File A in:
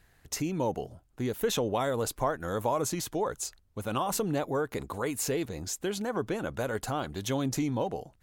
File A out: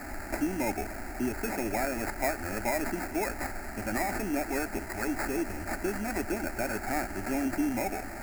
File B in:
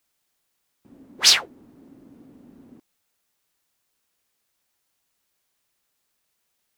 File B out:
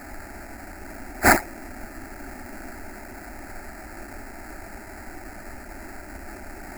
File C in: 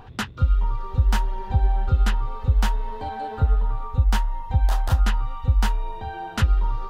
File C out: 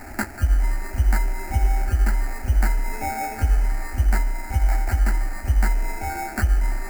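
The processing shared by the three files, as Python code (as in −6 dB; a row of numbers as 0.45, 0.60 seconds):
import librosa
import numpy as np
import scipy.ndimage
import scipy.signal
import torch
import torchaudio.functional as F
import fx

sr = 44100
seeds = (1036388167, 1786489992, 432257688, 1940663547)

p1 = fx.rider(x, sr, range_db=10, speed_s=0.5)
p2 = x + F.gain(torch.from_numpy(p1), 0.5).numpy()
p3 = fx.dmg_noise_colour(p2, sr, seeds[0], colour='pink', level_db=-32.0)
p4 = fx.sample_hold(p3, sr, seeds[1], rate_hz=3000.0, jitter_pct=0)
p5 = fx.fixed_phaser(p4, sr, hz=720.0, stages=8)
y = F.gain(torch.from_numpy(p5), -4.0).numpy()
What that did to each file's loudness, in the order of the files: −0.5, −13.0, 0.0 LU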